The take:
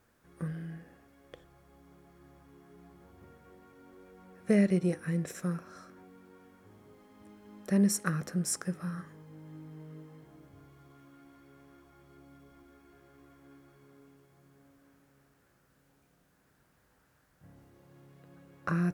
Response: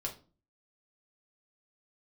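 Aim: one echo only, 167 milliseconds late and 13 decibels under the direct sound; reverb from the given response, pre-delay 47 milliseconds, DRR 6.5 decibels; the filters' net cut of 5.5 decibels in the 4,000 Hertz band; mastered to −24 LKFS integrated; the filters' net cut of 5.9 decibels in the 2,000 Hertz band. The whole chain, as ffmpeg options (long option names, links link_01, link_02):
-filter_complex "[0:a]equalizer=frequency=2000:width_type=o:gain=-6.5,equalizer=frequency=4000:width_type=o:gain=-8.5,aecho=1:1:167:0.224,asplit=2[link_01][link_02];[1:a]atrim=start_sample=2205,adelay=47[link_03];[link_02][link_03]afir=irnorm=-1:irlink=0,volume=-7dB[link_04];[link_01][link_04]amix=inputs=2:normalize=0,volume=7.5dB"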